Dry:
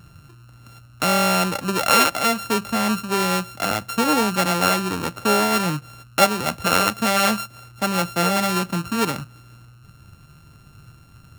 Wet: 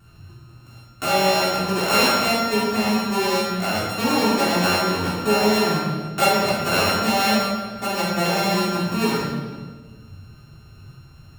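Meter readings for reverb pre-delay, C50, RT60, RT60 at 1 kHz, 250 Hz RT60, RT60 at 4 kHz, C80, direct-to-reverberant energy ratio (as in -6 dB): 3 ms, -1.0 dB, 1.5 s, 1.3 s, 2.0 s, 1.2 s, 2.0 dB, -10.0 dB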